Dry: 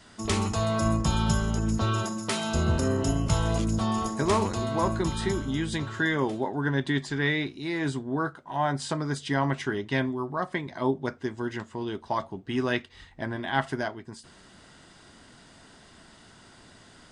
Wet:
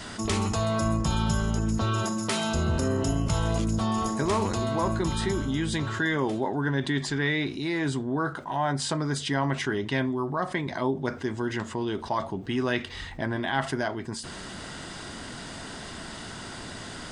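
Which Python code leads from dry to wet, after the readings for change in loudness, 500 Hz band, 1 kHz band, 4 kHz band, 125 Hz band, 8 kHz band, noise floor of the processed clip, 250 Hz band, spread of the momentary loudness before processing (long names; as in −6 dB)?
−0.5 dB, +0.5 dB, 0.0 dB, +2.0 dB, 0.0 dB, +1.5 dB, −40 dBFS, +0.5 dB, 7 LU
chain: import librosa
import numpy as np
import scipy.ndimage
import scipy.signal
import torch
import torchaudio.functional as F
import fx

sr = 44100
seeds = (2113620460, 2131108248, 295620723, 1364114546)

y = fx.env_flatten(x, sr, amount_pct=50)
y = F.gain(torch.from_numpy(y), -3.0).numpy()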